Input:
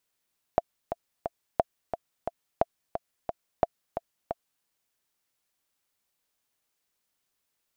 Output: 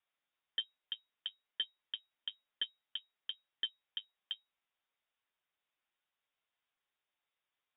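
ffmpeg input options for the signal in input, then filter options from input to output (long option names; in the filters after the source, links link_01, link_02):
-f lavfi -i "aevalsrc='pow(10,(-7.5-9*gte(mod(t,3*60/177),60/177))/20)*sin(2*PI*679*mod(t,60/177))*exp(-6.91*mod(t,60/177)/0.03)':duration=4.06:sample_rate=44100"
-af "flanger=delay=8.5:depth=1.5:regen=45:speed=1.9:shape=triangular,aresample=11025,asoftclip=type=tanh:threshold=-28.5dB,aresample=44100,lowpass=frequency=3200:width_type=q:width=0.5098,lowpass=frequency=3200:width_type=q:width=0.6013,lowpass=frequency=3200:width_type=q:width=0.9,lowpass=frequency=3200:width_type=q:width=2.563,afreqshift=-3800"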